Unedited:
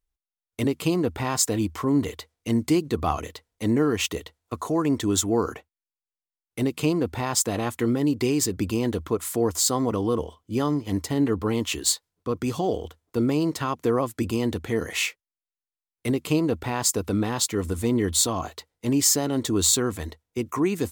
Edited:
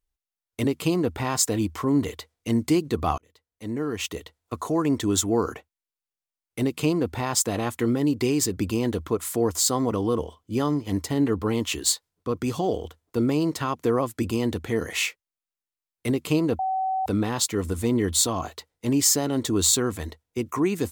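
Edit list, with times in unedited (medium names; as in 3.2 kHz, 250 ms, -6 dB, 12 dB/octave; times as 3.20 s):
3.18–4.58 s: fade in
16.59–17.06 s: bleep 760 Hz -22.5 dBFS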